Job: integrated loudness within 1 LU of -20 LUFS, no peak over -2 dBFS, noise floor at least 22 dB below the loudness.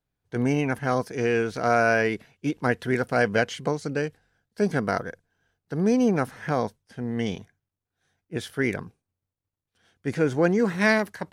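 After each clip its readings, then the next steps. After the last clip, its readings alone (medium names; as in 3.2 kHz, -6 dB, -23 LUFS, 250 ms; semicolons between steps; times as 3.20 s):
loudness -25.5 LUFS; peak level -8.5 dBFS; loudness target -20.0 LUFS
-> trim +5.5 dB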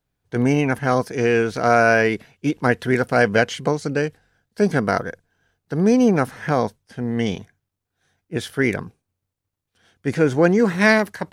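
loudness -20.0 LUFS; peak level -3.0 dBFS; noise floor -82 dBFS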